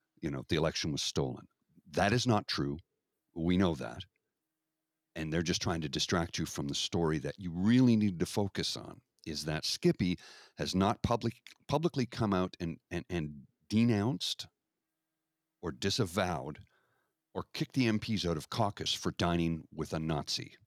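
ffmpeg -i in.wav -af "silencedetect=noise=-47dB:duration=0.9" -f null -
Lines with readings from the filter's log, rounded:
silence_start: 4.03
silence_end: 5.16 | silence_duration: 1.13
silence_start: 14.45
silence_end: 15.63 | silence_duration: 1.19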